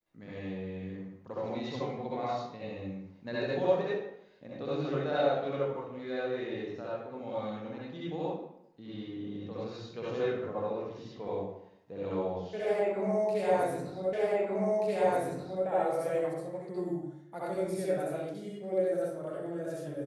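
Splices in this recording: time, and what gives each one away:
0:14.13: the same again, the last 1.53 s

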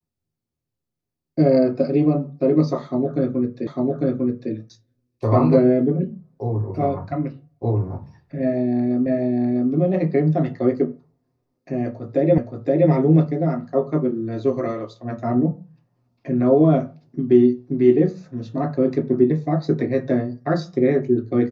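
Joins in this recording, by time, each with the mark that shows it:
0:03.67: the same again, the last 0.85 s
0:09.06: the same again, the last 0.65 s
0:12.38: the same again, the last 0.52 s

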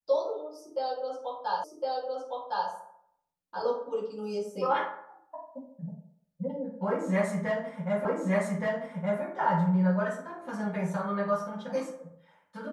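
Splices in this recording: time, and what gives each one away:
0:01.64: the same again, the last 1.06 s
0:08.05: the same again, the last 1.17 s

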